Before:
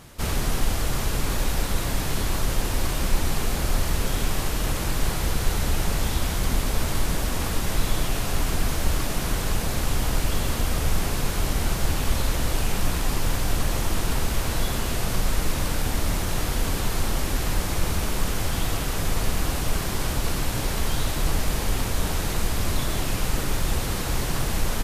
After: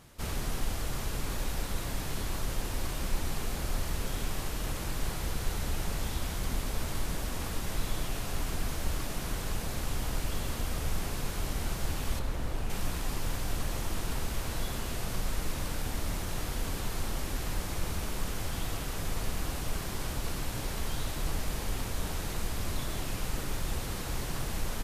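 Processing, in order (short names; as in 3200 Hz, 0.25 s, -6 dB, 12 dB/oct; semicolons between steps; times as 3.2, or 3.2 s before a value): 12.19–12.7 high shelf 2600 Hz -9.5 dB; gain -9 dB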